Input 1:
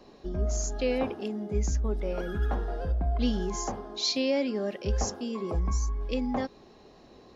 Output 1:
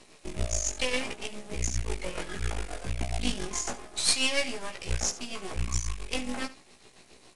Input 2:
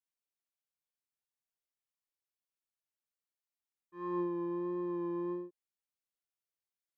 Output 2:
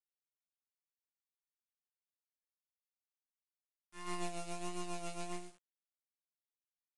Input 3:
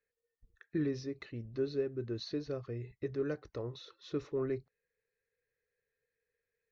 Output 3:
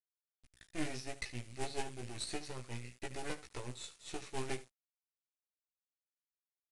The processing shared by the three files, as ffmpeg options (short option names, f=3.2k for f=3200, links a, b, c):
-filter_complex "[0:a]acrusher=bits=5:mode=log:mix=0:aa=0.000001,tremolo=f=7.3:d=0.59,equalizer=f=2.3k:t=o:w=0.76:g=12.5,asplit=2[a][b];[b]aecho=0:1:74:0.15[c];[a][c]amix=inputs=2:normalize=0,aeval=exprs='max(val(0),0)':c=same,acrusher=bits=10:mix=0:aa=0.000001,aemphasis=mode=production:type=75fm,asplit=2[d][e];[e]adelay=16,volume=-4dB[f];[d][f]amix=inputs=2:normalize=0" -ar 22050 -c:a adpcm_ima_wav